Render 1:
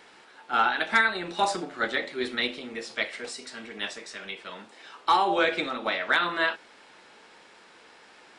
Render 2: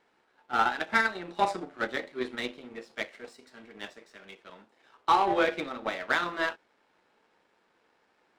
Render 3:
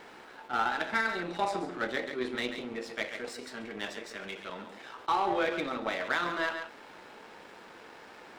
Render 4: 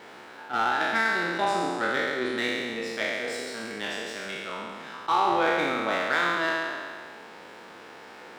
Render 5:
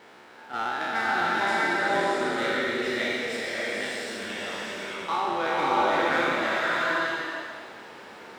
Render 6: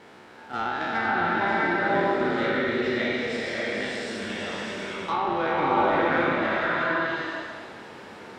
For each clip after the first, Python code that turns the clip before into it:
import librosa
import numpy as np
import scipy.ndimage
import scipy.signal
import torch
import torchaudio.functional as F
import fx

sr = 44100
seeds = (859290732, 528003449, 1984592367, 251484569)

y1 = fx.high_shelf(x, sr, hz=2200.0, db=-11.0)
y1 = fx.power_curve(y1, sr, exponent=1.4)
y1 = y1 * 10.0 ** (3.0 / 20.0)
y2 = y1 + 10.0 ** (-14.5 / 20.0) * np.pad(y1, (int(138 * sr / 1000.0), 0))[:len(y1)]
y2 = fx.env_flatten(y2, sr, amount_pct=50)
y2 = y2 * 10.0 ** (-6.5 / 20.0)
y3 = fx.spec_trails(y2, sr, decay_s=1.93)
y3 = scipy.signal.sosfilt(scipy.signal.butter(2, 74.0, 'highpass', fs=sr, output='sos'), y3)
y3 = y3 * 10.0 ** (1.5 / 20.0)
y4 = fx.rev_bloom(y3, sr, seeds[0], attack_ms=640, drr_db=-4.0)
y4 = y4 * 10.0 ** (-4.5 / 20.0)
y5 = fx.env_lowpass_down(y4, sr, base_hz=2900.0, full_db=-22.0)
y5 = fx.low_shelf(y5, sr, hz=260.0, db=10.0)